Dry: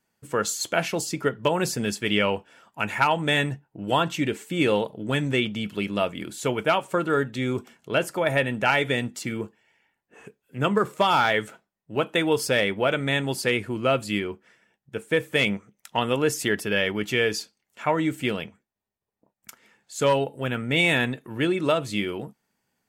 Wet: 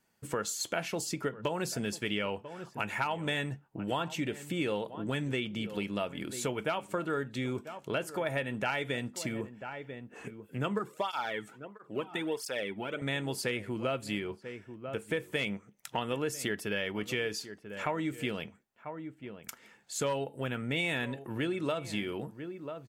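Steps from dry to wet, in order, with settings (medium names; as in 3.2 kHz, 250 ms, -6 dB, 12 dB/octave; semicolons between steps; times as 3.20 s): echo from a far wall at 170 m, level -18 dB; compression 2.5:1, threshold -36 dBFS, peak gain reduction 13.5 dB; 10.79–13.02 s: cancelling through-zero flanger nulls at 1.5 Hz, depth 2.1 ms; trim +1 dB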